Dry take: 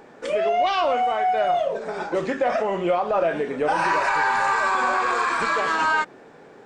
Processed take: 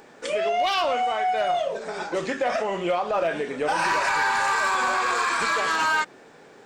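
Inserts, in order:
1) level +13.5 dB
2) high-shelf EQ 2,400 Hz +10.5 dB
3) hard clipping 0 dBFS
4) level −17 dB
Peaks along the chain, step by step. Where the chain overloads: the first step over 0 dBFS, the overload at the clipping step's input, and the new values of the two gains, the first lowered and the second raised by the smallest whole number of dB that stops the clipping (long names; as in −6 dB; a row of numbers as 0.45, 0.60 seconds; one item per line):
+2.0, +5.5, 0.0, −17.0 dBFS
step 1, 5.5 dB
step 1 +7.5 dB, step 4 −11 dB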